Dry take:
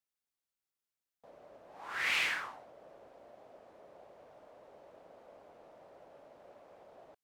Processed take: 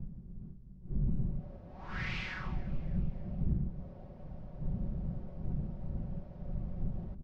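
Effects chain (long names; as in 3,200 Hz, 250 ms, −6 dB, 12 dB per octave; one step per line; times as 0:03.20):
wind on the microphone 170 Hz −45 dBFS
low-shelf EQ 360 Hz +11.5 dB
comb filter 5.4 ms, depth 55%
downward compressor 10 to 1, threshold −31 dBFS, peak gain reduction 14.5 dB
transistor ladder low-pass 6,200 Hz, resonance 50%
bass and treble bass +10 dB, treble −10 dB
on a send: echo with shifted repeats 291 ms, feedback 49%, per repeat +32 Hz, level −20 dB
on the sum: level +4 dB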